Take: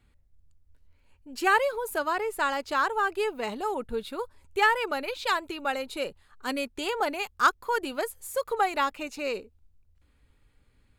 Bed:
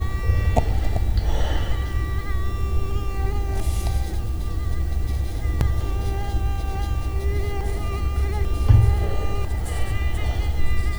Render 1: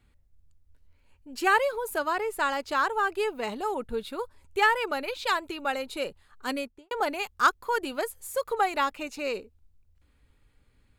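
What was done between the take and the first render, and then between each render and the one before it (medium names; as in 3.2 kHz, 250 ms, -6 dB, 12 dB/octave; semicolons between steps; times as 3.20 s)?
6.51–6.91 s: studio fade out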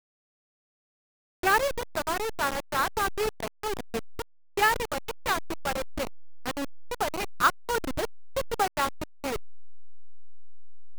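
send-on-delta sampling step -23.5 dBFS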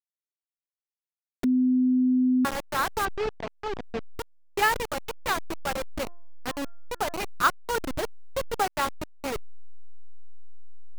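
1.44–2.45 s: bleep 254 Hz -18.5 dBFS; 3.05–4.07 s: distance through air 170 m; 5.92–7.15 s: de-hum 346.1 Hz, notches 5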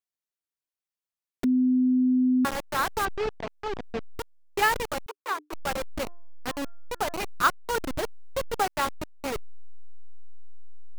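5.06–5.53 s: rippled Chebyshev high-pass 290 Hz, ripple 9 dB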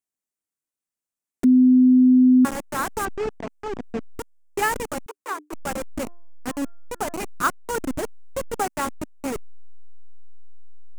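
graphic EQ 250/4000/8000 Hz +8/-7/+7 dB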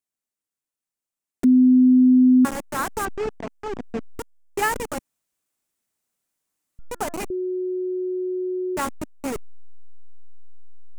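4.99–6.79 s: room tone; 7.30–8.77 s: bleep 367 Hz -23 dBFS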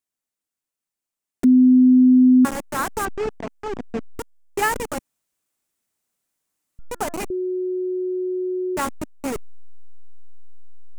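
trim +1.5 dB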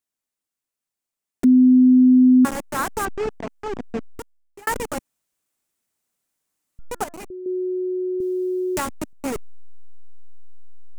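3.94–4.67 s: fade out; 7.04–7.46 s: gain -9 dB; 8.20–9.13 s: three bands compressed up and down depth 100%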